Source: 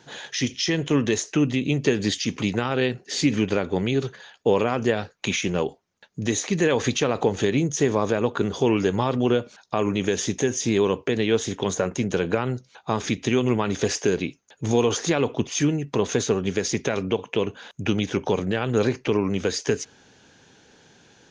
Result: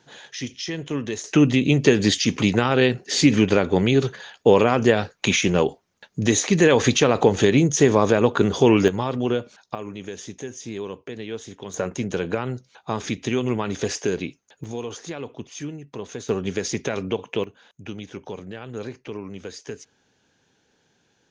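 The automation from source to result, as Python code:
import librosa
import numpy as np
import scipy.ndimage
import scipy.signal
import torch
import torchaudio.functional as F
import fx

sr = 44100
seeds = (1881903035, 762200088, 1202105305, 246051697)

y = fx.gain(x, sr, db=fx.steps((0.0, -6.0), (1.24, 5.0), (8.88, -2.0), (9.75, -11.0), (11.74, -2.0), (14.64, -11.0), (16.29, -1.5), (17.44, -11.5)))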